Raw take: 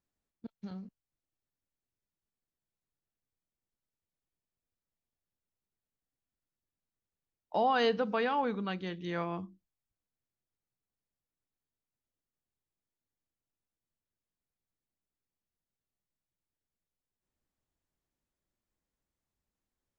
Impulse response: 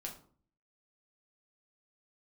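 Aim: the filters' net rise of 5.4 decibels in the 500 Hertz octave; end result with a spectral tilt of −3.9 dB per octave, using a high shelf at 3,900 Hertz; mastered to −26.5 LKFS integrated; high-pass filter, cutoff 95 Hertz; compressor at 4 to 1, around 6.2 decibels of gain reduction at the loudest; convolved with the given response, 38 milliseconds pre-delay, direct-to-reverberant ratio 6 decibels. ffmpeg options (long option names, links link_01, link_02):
-filter_complex "[0:a]highpass=95,equalizer=frequency=500:width_type=o:gain=6,highshelf=frequency=3900:gain=4.5,acompressor=threshold=-27dB:ratio=4,asplit=2[link_01][link_02];[1:a]atrim=start_sample=2205,adelay=38[link_03];[link_02][link_03]afir=irnorm=-1:irlink=0,volume=-4dB[link_04];[link_01][link_04]amix=inputs=2:normalize=0,volume=5.5dB"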